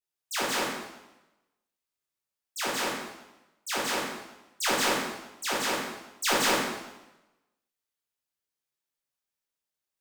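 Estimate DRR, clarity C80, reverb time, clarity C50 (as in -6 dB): -7.0 dB, 3.5 dB, 1.0 s, -0.5 dB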